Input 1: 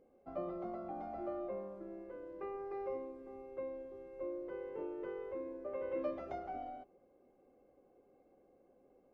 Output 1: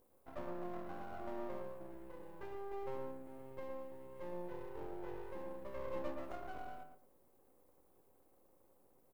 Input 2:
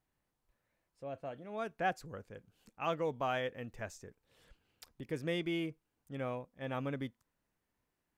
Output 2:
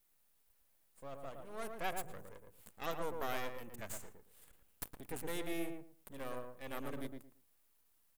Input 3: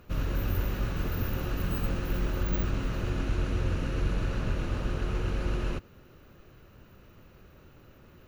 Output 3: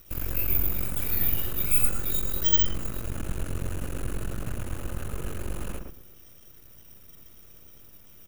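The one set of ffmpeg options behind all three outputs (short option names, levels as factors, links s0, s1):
-filter_complex "[0:a]aexciter=amount=6:drive=9.4:freq=7500,aeval=exprs='max(val(0),0)':c=same,asplit=2[s0][s1];[s1]adelay=113,lowpass=f=1200:p=1,volume=0.668,asplit=2[s2][s3];[s3]adelay=113,lowpass=f=1200:p=1,volume=0.22,asplit=2[s4][s5];[s5]adelay=113,lowpass=f=1200:p=1,volume=0.22[s6];[s0][s2][s4][s6]amix=inputs=4:normalize=0,volume=0.841"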